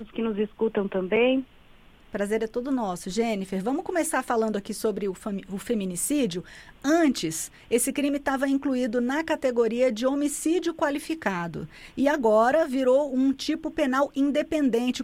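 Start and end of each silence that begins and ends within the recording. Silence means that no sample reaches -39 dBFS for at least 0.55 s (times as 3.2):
1.44–2.14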